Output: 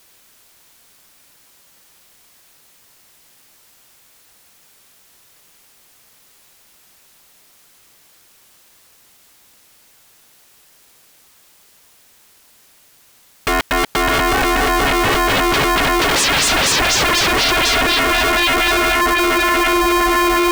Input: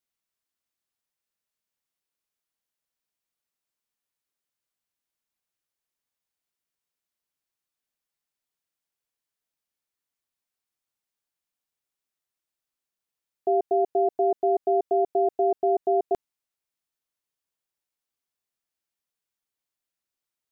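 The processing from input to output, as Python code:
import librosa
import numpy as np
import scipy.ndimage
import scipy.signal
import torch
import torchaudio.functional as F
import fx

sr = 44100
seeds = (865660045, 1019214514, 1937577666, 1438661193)

y = fx.echo_diffused(x, sr, ms=686, feedback_pct=75, wet_db=-15.5)
y = fx.over_compress(y, sr, threshold_db=-29.0, ratio=-0.5)
y = fx.fold_sine(y, sr, drive_db=19, ceiling_db=-20.0)
y = y * np.sign(np.sin(2.0 * np.pi * 350.0 * np.arange(len(y)) / sr))
y = y * librosa.db_to_amplitude(8.0)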